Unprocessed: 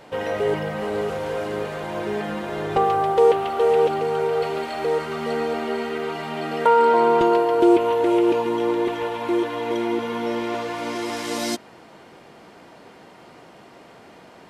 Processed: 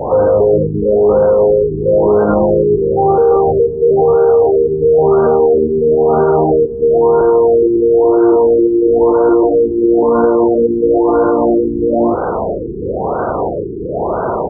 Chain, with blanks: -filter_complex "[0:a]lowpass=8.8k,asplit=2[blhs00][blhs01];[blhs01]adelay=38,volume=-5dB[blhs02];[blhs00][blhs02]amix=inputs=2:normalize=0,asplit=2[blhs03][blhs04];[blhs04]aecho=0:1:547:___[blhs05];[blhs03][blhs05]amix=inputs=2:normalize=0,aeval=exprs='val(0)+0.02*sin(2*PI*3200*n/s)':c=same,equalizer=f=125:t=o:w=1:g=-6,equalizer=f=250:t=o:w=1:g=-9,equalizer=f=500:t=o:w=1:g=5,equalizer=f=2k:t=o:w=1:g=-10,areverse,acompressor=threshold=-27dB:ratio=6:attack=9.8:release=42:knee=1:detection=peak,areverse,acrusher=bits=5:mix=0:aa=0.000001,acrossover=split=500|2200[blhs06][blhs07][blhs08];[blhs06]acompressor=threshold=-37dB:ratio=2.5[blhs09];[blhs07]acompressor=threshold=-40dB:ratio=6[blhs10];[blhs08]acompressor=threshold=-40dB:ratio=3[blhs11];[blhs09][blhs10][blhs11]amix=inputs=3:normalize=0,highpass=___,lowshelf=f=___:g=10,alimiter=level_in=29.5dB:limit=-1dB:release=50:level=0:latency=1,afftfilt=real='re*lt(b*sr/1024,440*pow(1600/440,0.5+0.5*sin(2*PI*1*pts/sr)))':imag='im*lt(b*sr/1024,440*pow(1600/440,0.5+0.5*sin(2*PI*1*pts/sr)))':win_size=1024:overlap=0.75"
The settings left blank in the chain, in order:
0.631, 48, 81